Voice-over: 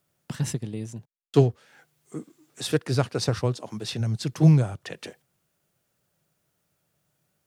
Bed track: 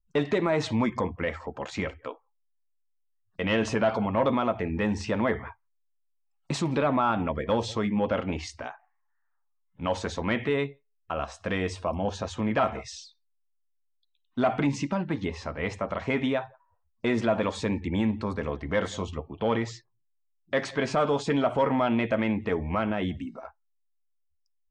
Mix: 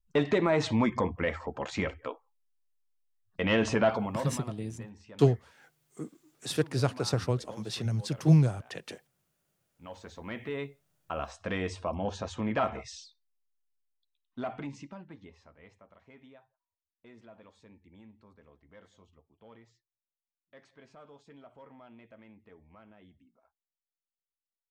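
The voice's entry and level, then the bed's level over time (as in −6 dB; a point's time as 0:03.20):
3.85 s, −4.0 dB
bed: 0:03.88 −0.5 dB
0:04.63 −22 dB
0:09.52 −22 dB
0:10.99 −4 dB
0:13.77 −4 dB
0:15.95 −28.5 dB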